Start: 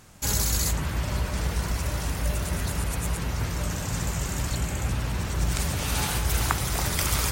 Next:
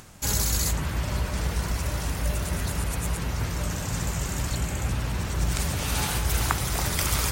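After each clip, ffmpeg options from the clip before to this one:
-af "acompressor=mode=upward:threshold=0.00708:ratio=2.5"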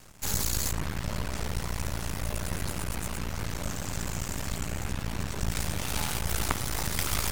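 -af "bandreject=f=60:t=h:w=6,bandreject=f=120:t=h:w=6,aeval=exprs='max(val(0),0)':c=same"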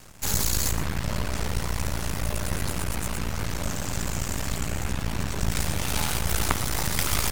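-af "aecho=1:1:119:0.2,volume=1.58"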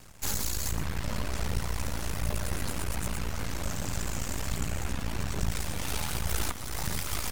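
-af "alimiter=limit=0.251:level=0:latency=1:release=490,aphaser=in_gain=1:out_gain=1:delay=4.4:decay=0.27:speed=1.3:type=triangular,volume=0.596"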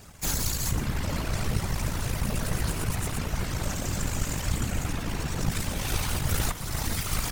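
-af "afftfilt=real='hypot(re,im)*cos(2*PI*random(0))':imag='hypot(re,im)*sin(2*PI*random(1))':win_size=512:overlap=0.75,volume=2.82"

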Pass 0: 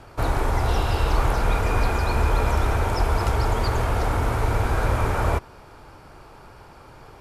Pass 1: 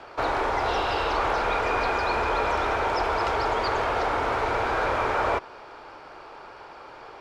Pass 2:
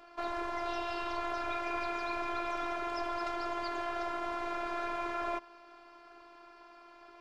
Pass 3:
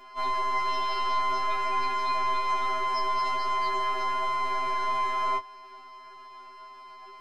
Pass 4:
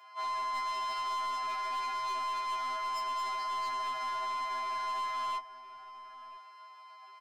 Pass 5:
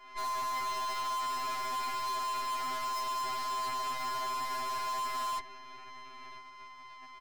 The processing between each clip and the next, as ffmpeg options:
-filter_complex "[0:a]acrossover=split=330 5500:gain=0.112 1 0.0631[s0][s1][s2];[s0][s1][s2]amix=inputs=3:normalize=0,asplit=2[s3][s4];[s4]alimiter=level_in=1.19:limit=0.0631:level=0:latency=1,volume=0.841,volume=0.75[s5];[s3][s5]amix=inputs=2:normalize=0"
-af "afftfilt=real='hypot(re,im)*cos(PI*b)':imag='0':win_size=512:overlap=0.75,volume=0.422"
-af "afftfilt=real='re*2.45*eq(mod(b,6),0)':imag='im*2.45*eq(mod(b,6),0)':win_size=2048:overlap=0.75,volume=2.66"
-filter_complex "[0:a]highpass=f=630:w=0.5412,highpass=f=630:w=1.3066,volume=21.1,asoftclip=hard,volume=0.0473,asplit=2[s0][s1];[s1]adelay=991.3,volume=0.224,highshelf=f=4000:g=-22.3[s2];[s0][s2]amix=inputs=2:normalize=0,volume=0.562"
-af "aeval=exprs='0.0335*(cos(1*acos(clip(val(0)/0.0335,-1,1)))-cos(1*PI/2))+0.00668*(cos(8*acos(clip(val(0)/0.0335,-1,1)))-cos(8*PI/2))':c=same"

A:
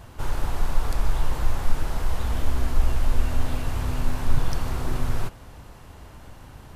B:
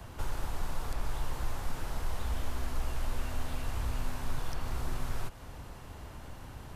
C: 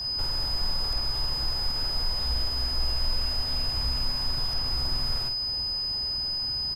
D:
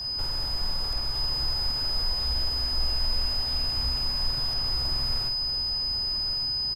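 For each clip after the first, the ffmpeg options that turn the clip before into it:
-filter_complex "[0:a]acrossover=split=82|270|550|4200[s0][s1][s2][s3][s4];[s0]acompressor=threshold=0.0398:ratio=4[s5];[s1]acompressor=threshold=0.00631:ratio=4[s6];[s2]acompressor=threshold=0.00251:ratio=4[s7];[s3]acompressor=threshold=0.00708:ratio=4[s8];[s4]acompressor=threshold=0.00316:ratio=4[s9];[s5][s6][s7][s8][s9]amix=inputs=5:normalize=0,volume=0.841"
-filter_complex "[0:a]aeval=exprs='val(0)+0.0251*sin(2*PI*5000*n/s)':c=same,asplit=2[s0][s1];[s1]asoftclip=type=tanh:threshold=0.02,volume=0.335[s2];[s0][s2]amix=inputs=2:normalize=0,asplit=2[s3][s4];[s4]adelay=49,volume=0.501[s5];[s3][s5]amix=inputs=2:normalize=0"
-af "aecho=1:1:1156:0.335,volume=0.891"

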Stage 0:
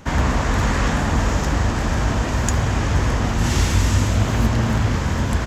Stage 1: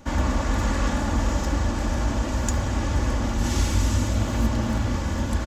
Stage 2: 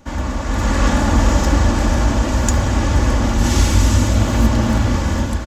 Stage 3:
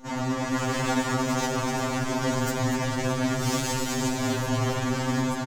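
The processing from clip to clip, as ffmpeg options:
-af "equalizer=f=2000:w=0.88:g=-4,aecho=1:1:3.5:0.51,volume=0.562"
-af "dynaudnorm=f=430:g=3:m=3.76"
-af "asoftclip=type=hard:threshold=0.112,aecho=1:1:241:0.355,afftfilt=real='re*2.45*eq(mod(b,6),0)':imag='im*2.45*eq(mod(b,6),0)':win_size=2048:overlap=0.75"

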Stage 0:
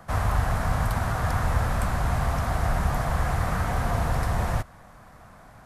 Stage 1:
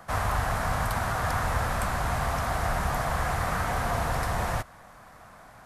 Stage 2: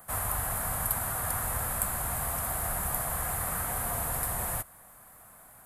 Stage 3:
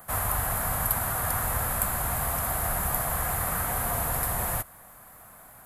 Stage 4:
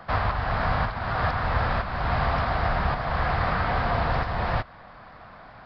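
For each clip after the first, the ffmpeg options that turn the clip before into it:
-af "lowshelf=f=340:g=-8,volume=1.26"
-af "aexciter=amount=14.4:drive=2.6:freq=8100,volume=0.422"
-af "equalizer=f=8900:w=2.6:g=-6,volume=1.68"
-af "alimiter=limit=0.141:level=0:latency=1:release=329,aresample=11025,aresample=44100,volume=2.24"

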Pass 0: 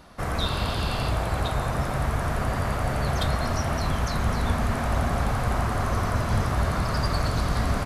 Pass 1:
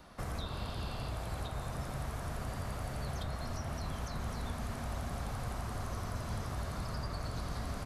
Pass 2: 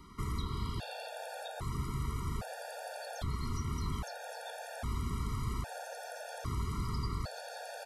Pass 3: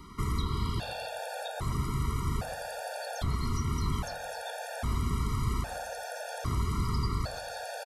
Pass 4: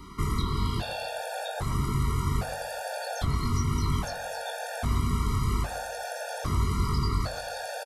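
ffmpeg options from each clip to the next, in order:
-filter_complex "[0:a]acrossover=split=230|1300|3100[s0][s1][s2][s3];[s0]acompressor=threshold=0.0251:ratio=4[s4];[s1]acompressor=threshold=0.01:ratio=4[s5];[s2]acompressor=threshold=0.00282:ratio=4[s6];[s3]acompressor=threshold=0.00501:ratio=4[s7];[s4][s5][s6][s7]amix=inputs=4:normalize=0,volume=0.531"
-af "afftfilt=real='re*gt(sin(2*PI*0.62*pts/sr)*(1-2*mod(floor(b*sr/1024/470),2)),0)':imag='im*gt(sin(2*PI*0.62*pts/sr)*(1-2*mod(floor(b*sr/1024/470),2)),0)':win_size=1024:overlap=0.75,volume=1.5"
-filter_complex "[0:a]asplit=2[s0][s1];[s1]adelay=131,lowpass=f=3200:p=1,volume=0.133,asplit=2[s2][s3];[s3]adelay=131,lowpass=f=3200:p=1,volume=0.37,asplit=2[s4][s5];[s5]adelay=131,lowpass=f=3200:p=1,volume=0.37[s6];[s0][s2][s4][s6]amix=inputs=4:normalize=0,volume=1.88"
-filter_complex "[0:a]asplit=2[s0][s1];[s1]adelay=21,volume=0.562[s2];[s0][s2]amix=inputs=2:normalize=0,volume=1.33"

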